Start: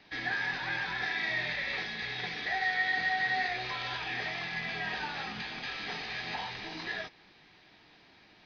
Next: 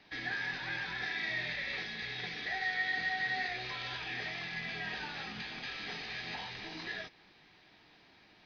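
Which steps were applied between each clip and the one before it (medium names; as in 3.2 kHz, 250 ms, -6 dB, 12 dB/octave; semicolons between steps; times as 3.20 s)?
dynamic bell 910 Hz, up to -5 dB, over -46 dBFS, Q 1.1; trim -2.5 dB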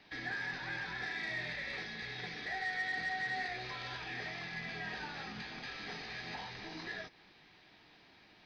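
dynamic bell 3 kHz, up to -6 dB, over -52 dBFS, Q 1.3; saturation -27.5 dBFS, distortion -25 dB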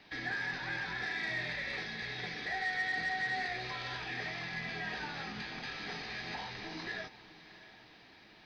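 echo that smears into a reverb 666 ms, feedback 43%, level -16 dB; trim +2.5 dB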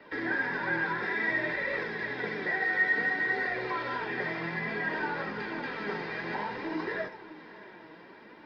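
reverberation RT60 0.35 s, pre-delay 74 ms, DRR 14 dB; flange 0.57 Hz, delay 1.5 ms, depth 4.9 ms, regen +53%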